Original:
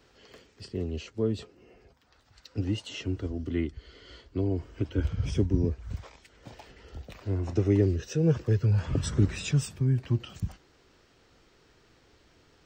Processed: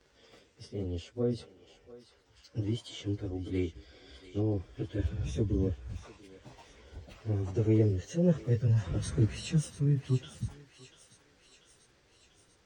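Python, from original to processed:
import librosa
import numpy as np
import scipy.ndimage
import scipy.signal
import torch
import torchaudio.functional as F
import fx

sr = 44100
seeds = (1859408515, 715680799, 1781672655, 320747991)

y = fx.pitch_bins(x, sr, semitones=1.5)
y = fx.echo_thinned(y, sr, ms=691, feedback_pct=67, hz=1000.0, wet_db=-12)
y = y * 10.0 ** (-1.5 / 20.0)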